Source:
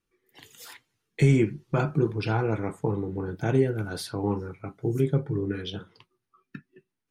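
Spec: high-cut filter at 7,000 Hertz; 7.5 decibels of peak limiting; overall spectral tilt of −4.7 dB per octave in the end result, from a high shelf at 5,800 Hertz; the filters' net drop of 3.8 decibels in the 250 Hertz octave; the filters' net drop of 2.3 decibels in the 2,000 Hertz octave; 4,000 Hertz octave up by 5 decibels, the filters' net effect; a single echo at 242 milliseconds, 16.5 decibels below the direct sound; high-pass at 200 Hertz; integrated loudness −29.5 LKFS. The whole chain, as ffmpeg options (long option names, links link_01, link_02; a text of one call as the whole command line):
ffmpeg -i in.wav -af "highpass=200,lowpass=7000,equalizer=frequency=250:width_type=o:gain=-3,equalizer=frequency=2000:width_type=o:gain=-5.5,equalizer=frequency=4000:width_type=o:gain=5.5,highshelf=frequency=5800:gain=7.5,alimiter=limit=-21.5dB:level=0:latency=1,aecho=1:1:242:0.15,volume=4.5dB" out.wav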